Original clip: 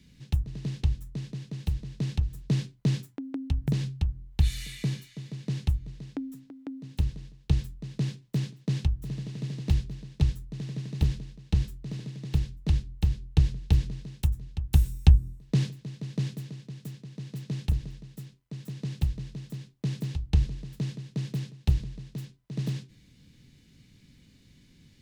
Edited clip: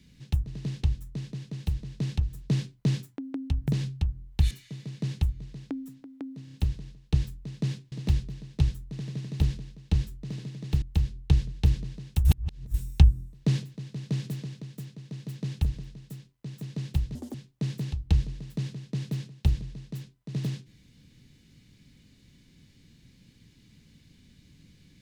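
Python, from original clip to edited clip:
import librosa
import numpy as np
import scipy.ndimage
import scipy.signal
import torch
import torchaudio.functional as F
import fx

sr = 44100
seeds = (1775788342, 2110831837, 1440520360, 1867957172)

y = fx.edit(x, sr, fx.cut(start_s=4.51, length_s=0.46),
    fx.stutter(start_s=6.9, slice_s=0.03, count=4),
    fx.cut(start_s=8.29, length_s=1.24),
    fx.cut(start_s=12.43, length_s=0.46),
    fx.reverse_span(start_s=14.32, length_s=0.49),
    fx.clip_gain(start_s=16.31, length_s=0.38, db=3.5),
    fx.speed_span(start_s=19.22, length_s=0.35, speed=1.81), tone=tone)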